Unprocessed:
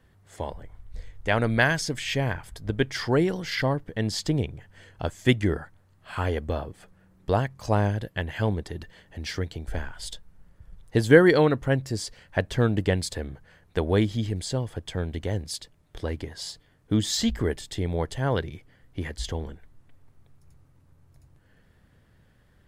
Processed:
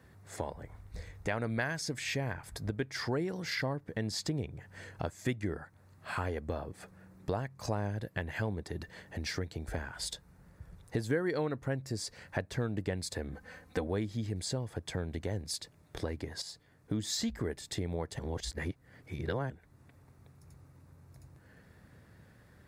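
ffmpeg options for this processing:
-filter_complex "[0:a]asettb=1/sr,asplit=3[a][b][c];[a]atrim=end=13.324[d];[b]atrim=start=13.32:end=13.87,asetpts=PTS-STARTPTS,afade=t=in:d=0.004:c=qsin,afade=t=out:st=0.546:d=0.004:c=qsin,aecho=1:1:3.9:0.9,atrim=end_sample=24255[e];[c]atrim=start=13.866[f];[d][e]acrossfade=d=0.004:c1=hsin:c2=qsin[g];[g][f]acrossfade=d=0.004:c1=qsin:c2=hsin,asplit=4[h][i][j][k];[h]atrim=end=16.42,asetpts=PTS-STARTPTS,afade=t=out:st=16.416:d=0.004:c=hsin:silence=0.237137[l];[i]atrim=start=16.42:end=18.192,asetpts=PTS-STARTPTS,afade=t=in:d=0.67:silence=0.237137[m];[j]atrim=start=18.188:end=19.502,asetpts=PTS-STARTPTS,areverse[n];[k]atrim=start=19.498[o];[l][m]concat=n=2:v=0:a=1[p];[p][n]acrossfade=d=0.004:c1=hsin:c2=hsin[q];[q][o]acrossfade=d=0.004:c1=hsin:c2=hsin,highpass=72,equalizer=f=3.1k:w=6:g=-10,acompressor=threshold=-39dB:ratio=3,volume=3.5dB"

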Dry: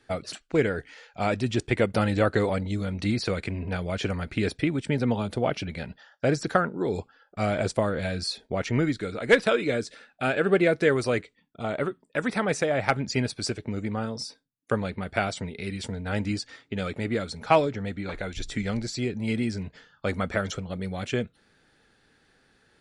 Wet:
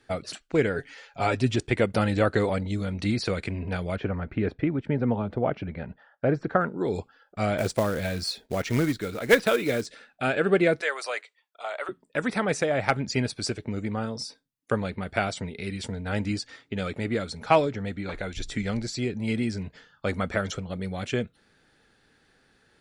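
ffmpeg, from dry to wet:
-filter_complex "[0:a]asettb=1/sr,asplit=3[a][b][c];[a]atrim=end=0.754[d];[b]atrim=start=0.75:end=1.56,asetpts=PTS-STARTPTS,afade=t=in:d=0.004:c=qsin,afade=t=out:st=0.806:d=0.004:c=qsin,aecho=1:1:7.3:0.7,atrim=end_sample=35721[e];[c]atrim=start=1.556[f];[d][e]acrossfade=d=0.004:c1=hsin:c2=qsin[g];[g][f]acrossfade=d=0.004:c1=qsin:c2=hsin,asettb=1/sr,asplit=3[h][i][j];[h]atrim=end=3.964[k];[i]atrim=start=3.96:end=6.61,asetpts=PTS-STARTPTS,afade=t=in:d=0.004:c=qsin,afade=t=out:st=2.646:d=0.004:c=qsin,lowpass=1.6k[l];[j]atrim=start=6.606[m];[k][l]acrossfade=d=0.004:c1=hsin:c2=qsin[n];[n][m]acrossfade=d=0.004:c1=qsin:c2=hsin,asettb=1/sr,asplit=3[o][p][q];[o]atrim=end=7.584[r];[p]atrim=start=7.58:end=9.86,asetpts=PTS-STARTPTS,afade=t=in:d=0.004:c=qsin,afade=t=out:st=2.276:d=0.004:c=qsin,acrusher=bits=4:mode=log:mix=0:aa=0.000001[s];[q]atrim=start=9.856[t];[r][s]acrossfade=d=0.004:c1=hsin:c2=qsin[u];[u][t]acrossfade=d=0.004:c1=qsin:c2=hsin,asettb=1/sr,asplit=3[v][w][x];[v]atrim=end=10.814[y];[w]atrim=start=10.81:end=11.89,asetpts=PTS-STARTPTS,afade=t=in:d=0.004:c=qsin,afade=t=out:st=1.076:d=0.004:c=qsin,highpass=f=640:w=0.5412,highpass=f=640:w=1.3066[z];[x]atrim=start=11.886[aa];[y][z]acrossfade=d=0.004:c1=hsin:c2=qsin[ab];[ab][aa]acrossfade=d=0.004:c1=qsin:c2=hsin"

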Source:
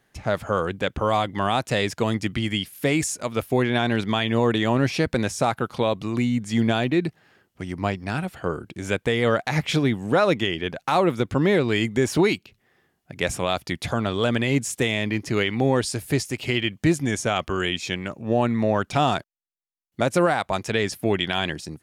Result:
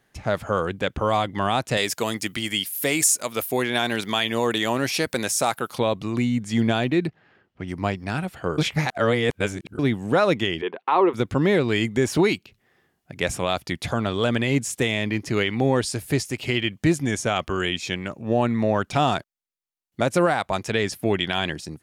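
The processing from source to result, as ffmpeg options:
-filter_complex "[0:a]asettb=1/sr,asplit=3[a][b][c];[a]atrim=end=1.774[d];[b]atrim=start=1.77:end=5.79,asetpts=PTS-STARTPTS,afade=t=in:d=0.004:c=qsin,afade=t=out:st=4.016:d=0.004:c=qsin,aemphasis=mode=production:type=bsi[e];[c]atrim=start=5.786[f];[d][e]acrossfade=d=0.004:c1=hsin:c2=qsin[g];[g][f]acrossfade=d=0.004:c1=qsin:c2=hsin,asettb=1/sr,asplit=3[h][i][j];[h]atrim=end=7.074[k];[i]atrim=start=7.07:end=7.68,asetpts=PTS-STARTPTS,afade=t=in:d=0.004:c=qsin,afade=t=out:st=0.606:d=0.004:c=qsin,lowpass=3.2k[l];[j]atrim=start=7.676[m];[k][l]acrossfade=d=0.004:c1=hsin:c2=qsin[n];[n][m]acrossfade=d=0.004:c1=qsin:c2=hsin,asplit=3[o][p][q];[o]afade=t=out:st=10.61:d=0.02[r];[p]highpass=f=250:w=0.5412,highpass=f=250:w=1.3066,equalizer=f=270:t=q:w=4:g=-7,equalizer=f=400:t=q:w=4:g=8,equalizer=f=610:t=q:w=4:g=-8,equalizer=f=1k:t=q:w=4:g=8,equalizer=f=1.5k:t=q:w=4:g=-5,equalizer=f=2.3k:t=q:w=4:g=-3,lowpass=f=3k:w=0.5412,lowpass=f=3k:w=1.3066,afade=t=in:st=10.61:d=0.02,afade=t=out:st=11.13:d=0.02[s];[q]afade=t=in:st=11.13:d=0.02[t];[r][s][t]amix=inputs=3:normalize=0,asplit=3[u][v][w];[u]atrim=end=8.582[x];[v]atrim=start=8.578:end=9.792,asetpts=PTS-STARTPTS,areverse[y];[w]atrim=start=9.788[z];[x][y]acrossfade=d=0.004:c1=hsin:c2=hsin[aa];[aa][z]acrossfade=d=0.004:c1=hsin:c2=hsin"

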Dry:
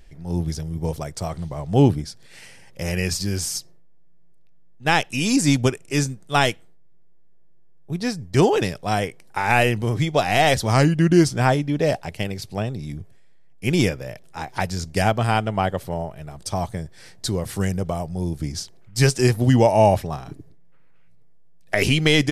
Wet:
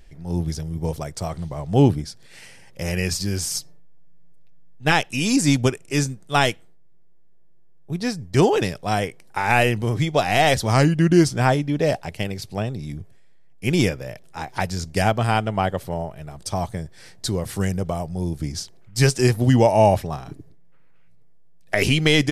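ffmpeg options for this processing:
-filter_complex "[0:a]asettb=1/sr,asplit=3[a][b][c];[a]atrim=end=3.504[d];[b]atrim=start=3.5:end=4.92,asetpts=PTS-STARTPTS,afade=t=in:d=0.004:c=qsin,afade=t=out:st=1.416:d=0.004:c=qsin,aecho=1:1:6.8:0.65,atrim=end_sample=62622[e];[c]atrim=start=4.916[f];[d][e]acrossfade=d=0.004:c1=hsin:c2=qsin[g];[g][f]acrossfade=d=0.004:c1=qsin:c2=hsin"

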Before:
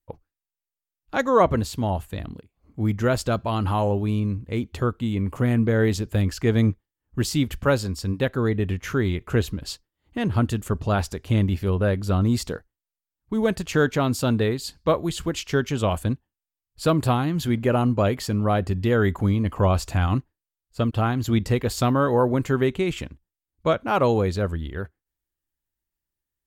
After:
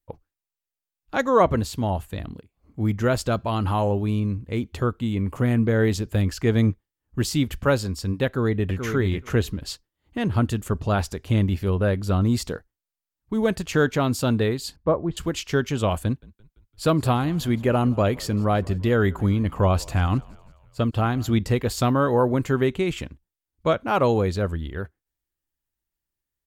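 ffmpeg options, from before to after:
-filter_complex "[0:a]asplit=2[a][b];[b]afade=t=in:st=8.26:d=0.01,afade=t=out:st=8.89:d=0.01,aecho=0:1:430|860:0.446684|0.0446684[c];[a][c]amix=inputs=2:normalize=0,asettb=1/sr,asplit=3[d][e][f];[d]atrim=end=14.764[g];[e]atrim=start=14.76:end=15.17,asetpts=PTS-STARTPTS,afade=t=in:d=0.004:c=qsin,afade=t=out:st=0.406:d=0.004:c=qsin,lowpass=1.1k[h];[f]atrim=start=15.166[i];[g][h]acrossfade=d=0.004:c1=hsin:c2=qsin[j];[j][i]acrossfade=d=0.004:c1=qsin:c2=hsin,asettb=1/sr,asplit=3[k][l][m];[k]atrim=end=16.054[n];[l]atrim=start=16.05:end=21.33,asetpts=PTS-STARTPTS,afade=t=in:d=0.004:c=qsin,afade=t=out:st=5.276:d=0.004:c=qsin,asplit=5[o][p][q][r][s];[p]adelay=170,afreqshift=-52,volume=-23.5dB[t];[q]adelay=340,afreqshift=-104,volume=-28.5dB[u];[r]adelay=510,afreqshift=-156,volume=-33.6dB[v];[s]adelay=680,afreqshift=-208,volume=-38.6dB[w];[o][t][u][v][w]amix=inputs=5:normalize=0,atrim=end_sample=232848[x];[m]atrim=start=21.326[y];[n][x]acrossfade=d=0.004:c1=hsin:c2=qsin[z];[z][y]acrossfade=d=0.004:c1=qsin:c2=hsin"

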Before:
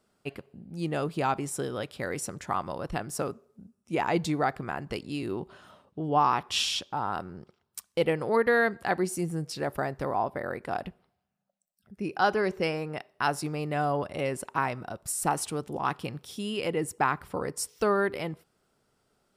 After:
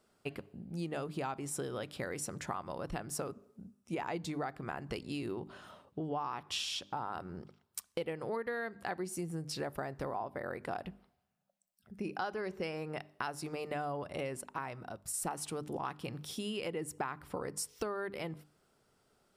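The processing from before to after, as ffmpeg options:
-filter_complex "[0:a]asplit=3[a][b][c];[a]atrim=end=14.412[d];[b]atrim=start=14.408:end=15.142,asetpts=PTS-STARTPTS,volume=-6.5dB[e];[c]atrim=start=15.138[f];[d][e]acrossfade=d=0.004:c1=hsin:c2=hsin[g];[g][f]acrossfade=d=0.004:c1=hsin:c2=hsin,bandreject=f=50:t=h:w=6,bandreject=f=100:t=h:w=6,bandreject=f=150:t=h:w=6,bandreject=f=200:t=h:w=6,bandreject=f=250:t=h:w=6,bandreject=f=300:t=h:w=6,acompressor=threshold=-35dB:ratio=6"

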